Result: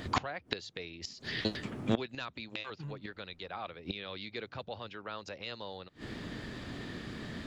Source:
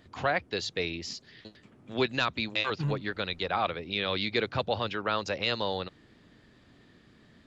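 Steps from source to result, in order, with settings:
in parallel at 0 dB: downward compressor 8 to 1, threshold −41 dBFS, peak gain reduction 18.5 dB
on the sum: gate with flip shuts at −25 dBFS, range −24 dB
level +10 dB

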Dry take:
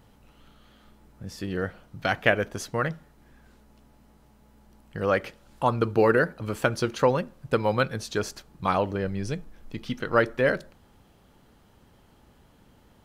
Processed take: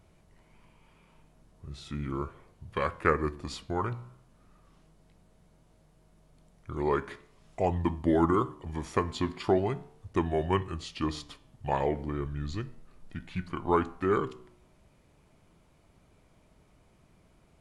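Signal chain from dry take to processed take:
flanger 0.51 Hz, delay 7.7 ms, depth 4.7 ms, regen +86%
wrong playback speed 45 rpm record played at 33 rpm

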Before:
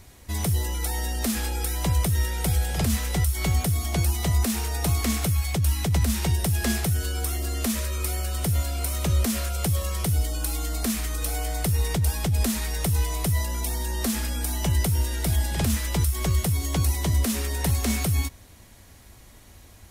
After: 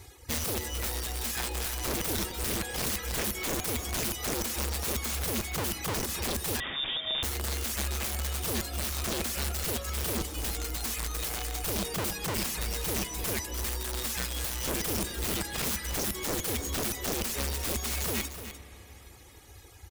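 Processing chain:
reverb reduction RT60 0.55 s
high-pass filter 63 Hz 12 dB per octave
reverb reduction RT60 0.64 s
comb filter 2.4 ms, depth 92%
dynamic equaliser 900 Hz, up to −6 dB, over −48 dBFS, Q 3.2
in parallel at −1 dB: downward compressor 16 to 1, threshold −30 dBFS, peak gain reduction 14 dB
on the sum: wrap-around overflow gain 19.5 dB
single-tap delay 299 ms −11 dB
on a send at −12.5 dB: convolution reverb RT60 4.3 s, pre-delay 30 ms
0:06.60–0:07.23: on the sum: voice inversion scrambler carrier 3,600 Hz
level −7 dB

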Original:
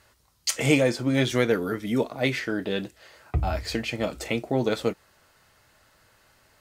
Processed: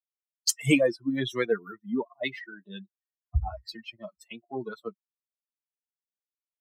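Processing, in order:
spectral dynamics exaggerated over time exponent 3
multiband upward and downward expander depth 40%

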